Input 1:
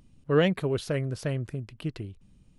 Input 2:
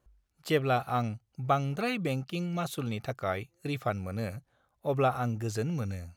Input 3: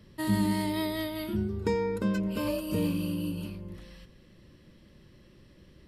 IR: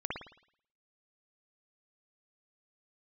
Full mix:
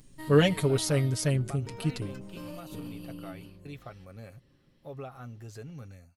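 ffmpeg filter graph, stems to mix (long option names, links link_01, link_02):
-filter_complex "[0:a]bass=frequency=250:gain=2,treble=frequency=4000:gain=14,aecho=1:1:7:0.88,volume=-3dB[link_01];[1:a]acompressor=threshold=-28dB:ratio=6,volume=-11.5dB[link_02];[2:a]aeval=exprs='0.188*(cos(1*acos(clip(val(0)/0.188,-1,1)))-cos(1*PI/2))+0.00841*(cos(8*acos(clip(val(0)/0.188,-1,1)))-cos(8*PI/2))':channel_layout=same,volume=-10dB[link_03];[link_02][link_03]amix=inputs=2:normalize=0,aecho=1:1:7.4:0.42,alimiter=level_in=6.5dB:limit=-24dB:level=0:latency=1:release=409,volume=-6.5dB,volume=0dB[link_04];[link_01][link_04]amix=inputs=2:normalize=0"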